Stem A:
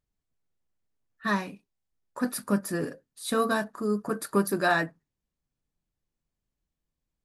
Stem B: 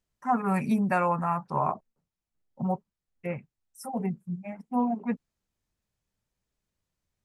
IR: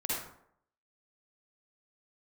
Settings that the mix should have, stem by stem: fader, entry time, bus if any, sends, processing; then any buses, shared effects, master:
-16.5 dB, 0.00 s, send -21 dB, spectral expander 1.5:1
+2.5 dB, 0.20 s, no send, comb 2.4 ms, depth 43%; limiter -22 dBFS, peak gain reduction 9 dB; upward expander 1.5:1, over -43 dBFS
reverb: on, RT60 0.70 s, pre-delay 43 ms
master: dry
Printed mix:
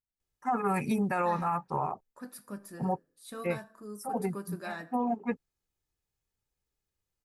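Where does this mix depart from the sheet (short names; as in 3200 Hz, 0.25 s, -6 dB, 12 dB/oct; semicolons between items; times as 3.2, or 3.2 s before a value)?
stem A: missing spectral expander 1.5:1; master: extra high shelf 10000 Hz +5.5 dB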